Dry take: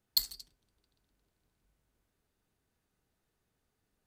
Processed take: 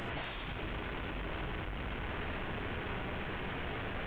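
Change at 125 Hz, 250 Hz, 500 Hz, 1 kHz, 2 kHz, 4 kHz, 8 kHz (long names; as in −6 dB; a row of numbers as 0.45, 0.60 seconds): +30.0 dB, +34.0 dB, +34.0 dB, +29.5 dB, +28.0 dB, −6.5 dB, below −20 dB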